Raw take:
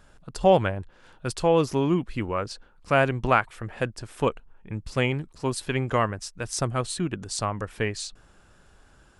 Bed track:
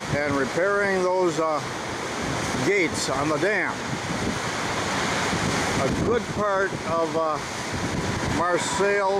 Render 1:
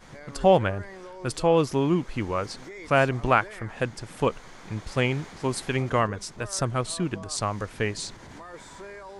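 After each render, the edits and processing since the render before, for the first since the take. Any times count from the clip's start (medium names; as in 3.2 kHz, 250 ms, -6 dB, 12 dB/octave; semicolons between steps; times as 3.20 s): add bed track -20.5 dB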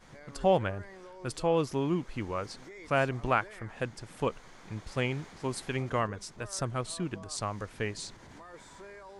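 trim -6.5 dB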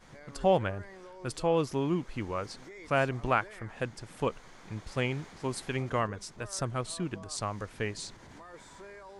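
no audible change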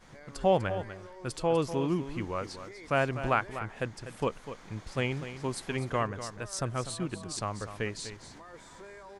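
delay 247 ms -11.5 dB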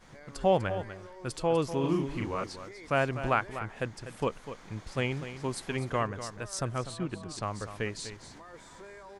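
1.80–2.44 s: doubling 37 ms -2.5 dB; 6.78–7.43 s: treble shelf 5.9 kHz -10 dB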